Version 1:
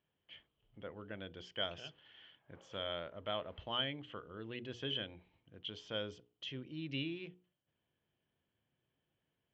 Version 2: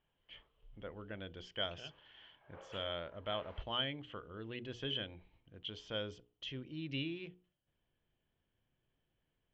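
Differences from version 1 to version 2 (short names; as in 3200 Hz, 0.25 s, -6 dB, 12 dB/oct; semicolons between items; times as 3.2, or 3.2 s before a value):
background +10.0 dB; master: remove HPF 95 Hz 12 dB/oct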